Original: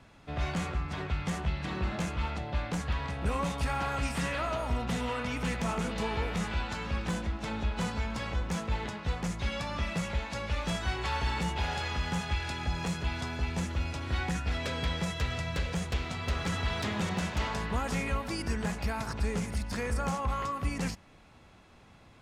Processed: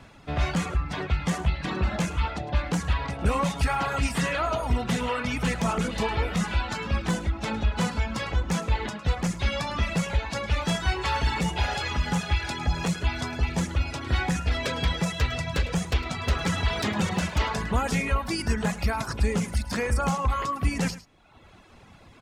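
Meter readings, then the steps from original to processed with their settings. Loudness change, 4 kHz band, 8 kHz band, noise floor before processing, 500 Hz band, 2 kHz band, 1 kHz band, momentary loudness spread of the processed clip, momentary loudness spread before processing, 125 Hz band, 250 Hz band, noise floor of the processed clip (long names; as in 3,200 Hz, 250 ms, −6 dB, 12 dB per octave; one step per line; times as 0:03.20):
+6.0 dB, +5.5 dB, +6.5 dB, −56 dBFS, +5.5 dB, +5.5 dB, +5.5 dB, 3 LU, 3 LU, +6.0 dB, +6.0 dB, −51 dBFS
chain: reverb reduction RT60 1 s
on a send: single-tap delay 106 ms −16 dB
on the sum: level +7.5 dB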